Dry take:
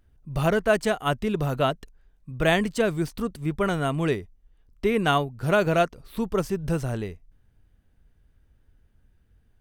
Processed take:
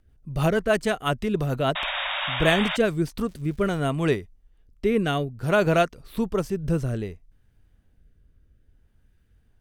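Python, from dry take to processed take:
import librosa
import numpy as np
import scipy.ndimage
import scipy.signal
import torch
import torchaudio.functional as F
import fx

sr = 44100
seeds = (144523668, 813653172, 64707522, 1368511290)

y = fx.dmg_crackle(x, sr, seeds[0], per_s=400.0, level_db=-41.0, at=(3.26, 3.79), fade=0.02)
y = fx.rotary_switch(y, sr, hz=6.3, then_hz=0.6, switch_at_s=2.52)
y = fx.spec_paint(y, sr, seeds[1], shape='noise', start_s=1.75, length_s=1.02, low_hz=540.0, high_hz=3800.0, level_db=-31.0)
y = y * librosa.db_to_amplitude(2.5)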